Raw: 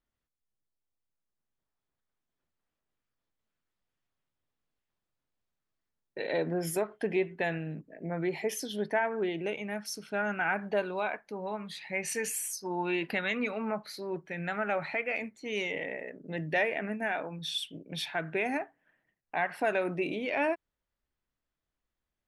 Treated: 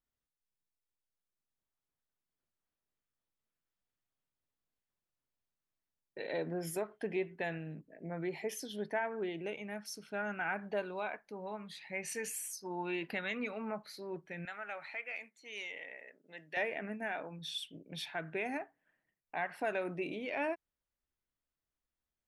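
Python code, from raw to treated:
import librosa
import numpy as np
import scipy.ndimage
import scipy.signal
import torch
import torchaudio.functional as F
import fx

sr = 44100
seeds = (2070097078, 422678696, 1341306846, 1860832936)

y = fx.highpass(x, sr, hz=1500.0, slope=6, at=(14.45, 16.57))
y = y * librosa.db_to_amplitude(-6.5)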